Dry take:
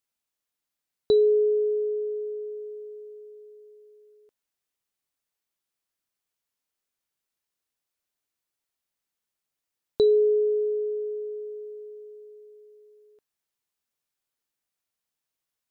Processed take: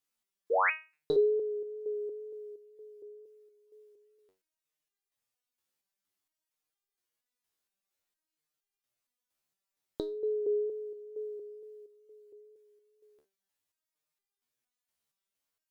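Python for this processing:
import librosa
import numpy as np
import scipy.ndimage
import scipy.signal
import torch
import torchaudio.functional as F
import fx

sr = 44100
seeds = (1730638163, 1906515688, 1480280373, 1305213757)

y = fx.spec_paint(x, sr, seeds[0], shape='rise', start_s=0.5, length_s=0.21, low_hz=400.0, high_hz=2900.0, level_db=-25.0)
y = fx.wow_flutter(y, sr, seeds[1], rate_hz=2.1, depth_cents=21.0)
y = fx.resonator_held(y, sr, hz=4.3, low_hz=74.0, high_hz=400.0)
y = y * librosa.db_to_amplitude(8.5)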